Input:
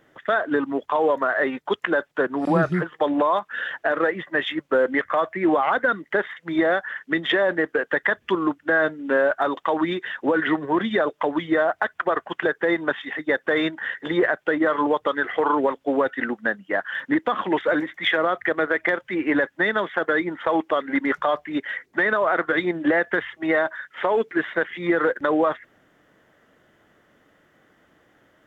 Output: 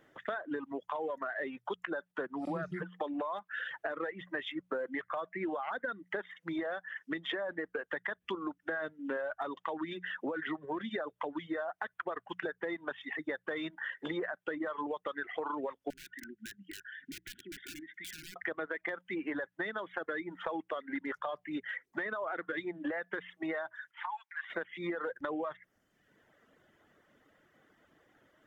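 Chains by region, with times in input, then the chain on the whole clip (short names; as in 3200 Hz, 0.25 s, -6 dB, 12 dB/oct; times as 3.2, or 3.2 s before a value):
15.9–18.36 wrapped overs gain 16.5 dB + compressor 8:1, threshold -37 dBFS + brick-wall FIR band-stop 410–1400 Hz
23.91–24.5 steep high-pass 800 Hz 96 dB/oct + high shelf 2100 Hz -11 dB + notch 1300 Hz, Q 7.8
whole clip: reverb removal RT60 0.85 s; notches 60/120/180 Hz; compressor 4:1, threshold -30 dBFS; gain -5.5 dB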